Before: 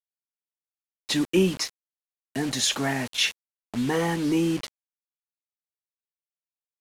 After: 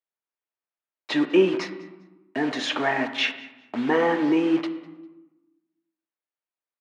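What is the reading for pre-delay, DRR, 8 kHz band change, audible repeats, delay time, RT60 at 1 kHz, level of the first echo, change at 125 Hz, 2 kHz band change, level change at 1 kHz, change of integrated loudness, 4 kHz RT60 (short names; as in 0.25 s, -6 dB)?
3 ms, 7.0 dB, -15.0 dB, 1, 0.2 s, 1.1 s, -22.5 dB, -8.5 dB, +4.0 dB, +5.5 dB, +1.5 dB, 0.85 s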